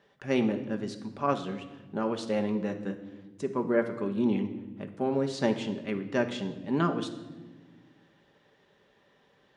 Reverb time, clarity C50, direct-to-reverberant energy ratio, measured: 1.2 s, 10.5 dB, 5.5 dB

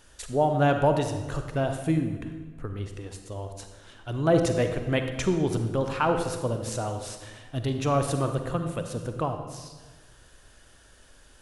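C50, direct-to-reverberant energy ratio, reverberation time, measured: 6.5 dB, 6.0 dB, 1.3 s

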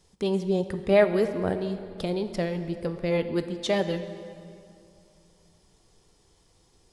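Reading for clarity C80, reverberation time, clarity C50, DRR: 11.0 dB, 2.5 s, 10.0 dB, 9.0 dB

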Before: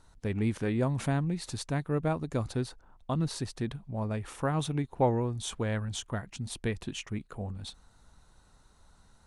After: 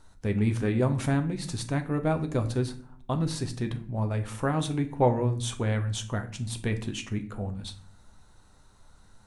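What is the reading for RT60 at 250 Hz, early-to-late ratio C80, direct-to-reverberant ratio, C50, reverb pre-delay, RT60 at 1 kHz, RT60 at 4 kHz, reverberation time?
0.80 s, 17.5 dB, 6.0 dB, 13.5 dB, 8 ms, 0.40 s, 0.35 s, 0.50 s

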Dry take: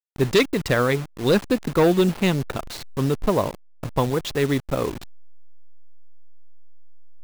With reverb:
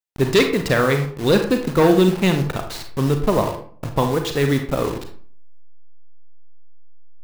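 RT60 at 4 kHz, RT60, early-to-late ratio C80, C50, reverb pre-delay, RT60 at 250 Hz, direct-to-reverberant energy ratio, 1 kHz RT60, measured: 0.30 s, 0.50 s, 12.0 dB, 8.0 dB, 33 ms, 0.60 s, 5.0 dB, 0.50 s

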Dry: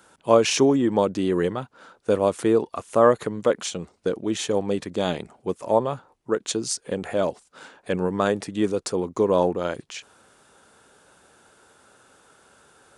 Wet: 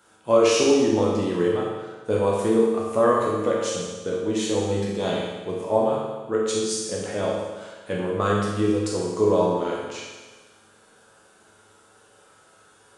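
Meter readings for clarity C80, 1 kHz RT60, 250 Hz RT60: 2.0 dB, 1.3 s, 1.3 s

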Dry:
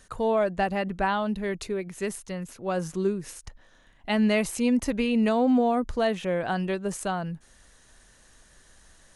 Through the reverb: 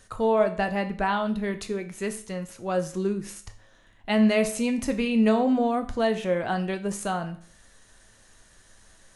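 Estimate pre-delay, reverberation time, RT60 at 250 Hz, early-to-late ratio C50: 9 ms, 0.50 s, 0.45 s, 13.0 dB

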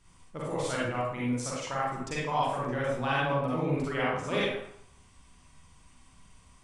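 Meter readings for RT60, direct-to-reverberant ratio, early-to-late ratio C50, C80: 0.70 s, -7.0 dB, -2.5 dB, 2.5 dB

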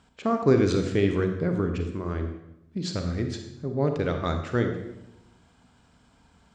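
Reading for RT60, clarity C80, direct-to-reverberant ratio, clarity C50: 0.90 s, 9.0 dB, 5.5 dB, 6.5 dB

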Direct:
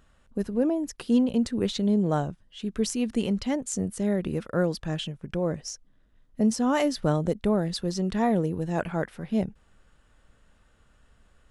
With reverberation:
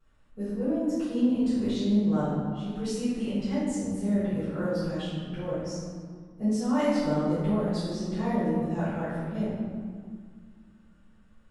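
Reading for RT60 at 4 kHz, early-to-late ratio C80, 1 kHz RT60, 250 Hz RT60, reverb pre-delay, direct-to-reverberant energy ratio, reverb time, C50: 1.1 s, 0.0 dB, 2.0 s, 2.9 s, 4 ms, -17.0 dB, 2.0 s, -3.0 dB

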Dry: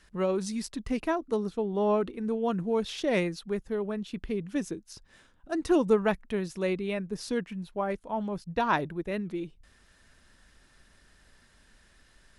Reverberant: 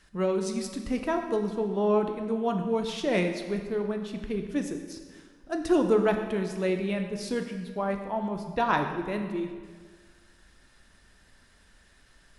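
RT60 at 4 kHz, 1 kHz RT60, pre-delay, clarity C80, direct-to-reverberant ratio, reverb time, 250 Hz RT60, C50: 1.3 s, 1.7 s, 8 ms, 8.0 dB, 4.5 dB, 1.7 s, 1.6 s, 6.5 dB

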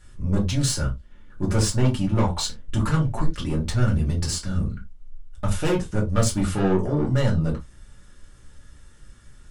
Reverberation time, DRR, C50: no single decay rate, -4.0 dB, 13.0 dB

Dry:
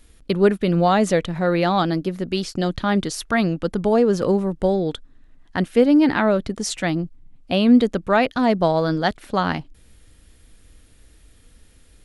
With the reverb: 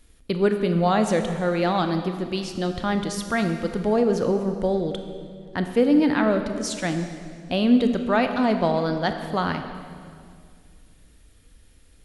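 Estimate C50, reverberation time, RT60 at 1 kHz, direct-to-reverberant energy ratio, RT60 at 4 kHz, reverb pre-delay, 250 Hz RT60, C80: 7.5 dB, 2.1 s, 2.0 s, 6.5 dB, 1.9 s, 23 ms, 2.7 s, 8.5 dB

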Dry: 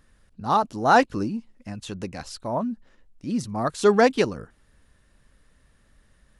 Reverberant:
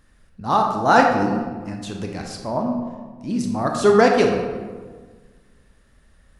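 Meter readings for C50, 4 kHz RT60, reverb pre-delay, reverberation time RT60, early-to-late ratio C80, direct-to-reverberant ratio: 3.5 dB, 0.85 s, 21 ms, 1.5 s, 5.5 dB, 1.5 dB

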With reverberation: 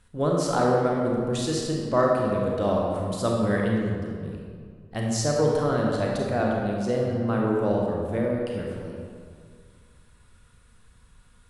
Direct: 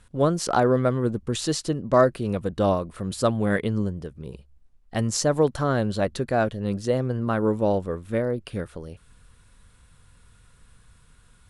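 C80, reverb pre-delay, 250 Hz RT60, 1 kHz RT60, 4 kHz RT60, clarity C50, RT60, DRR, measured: 1.5 dB, 29 ms, 2.1 s, 2.0 s, 1.3 s, -0.5 dB, 2.0 s, -2.0 dB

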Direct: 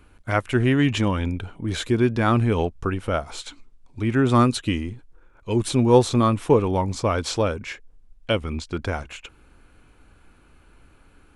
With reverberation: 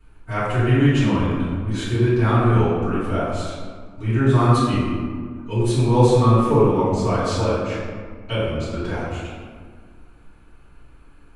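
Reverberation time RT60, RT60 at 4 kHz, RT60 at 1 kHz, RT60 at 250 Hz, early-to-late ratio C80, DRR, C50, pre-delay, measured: 1.7 s, 0.90 s, 1.7 s, 2.3 s, 0.5 dB, -14.5 dB, -2.0 dB, 3 ms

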